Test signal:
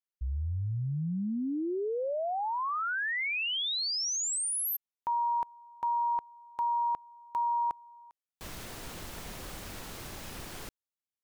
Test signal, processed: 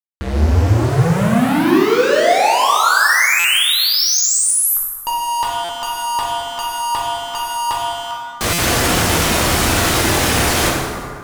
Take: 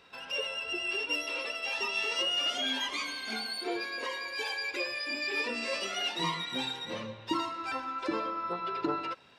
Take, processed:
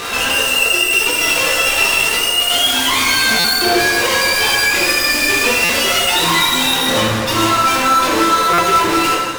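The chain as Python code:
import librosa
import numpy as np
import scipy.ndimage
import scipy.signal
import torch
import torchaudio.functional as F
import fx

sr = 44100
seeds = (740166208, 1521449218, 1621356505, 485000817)

p1 = scipy.signal.sosfilt(scipy.signal.butter(2, 12000.0, 'lowpass', fs=sr, output='sos'), x)
p2 = fx.dereverb_blind(p1, sr, rt60_s=1.6)
p3 = p2 + 10.0 ** (-60.0 / 20.0) * np.sin(2.0 * np.pi * 1200.0 * np.arange(len(p2)) / sr)
p4 = scipy.signal.sosfilt(scipy.signal.butter(2, 50.0, 'highpass', fs=sr, output='sos'), p3)
p5 = fx.dynamic_eq(p4, sr, hz=3000.0, q=2.6, threshold_db=-49.0, ratio=4.0, max_db=4)
p6 = fx.over_compress(p5, sr, threshold_db=-36.0, ratio=-0.5)
p7 = p5 + (p6 * librosa.db_to_amplitude(0.0))
p8 = fx.fuzz(p7, sr, gain_db=54.0, gate_db=-51.0)
p9 = fx.hum_notches(p8, sr, base_hz=50, count=4)
p10 = fx.rev_plate(p9, sr, seeds[0], rt60_s=2.0, hf_ratio=0.55, predelay_ms=0, drr_db=-4.5)
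p11 = fx.buffer_glitch(p10, sr, at_s=(3.39, 5.64, 8.53), block=256, repeats=8)
y = p11 * librosa.db_to_amplitude(-5.5)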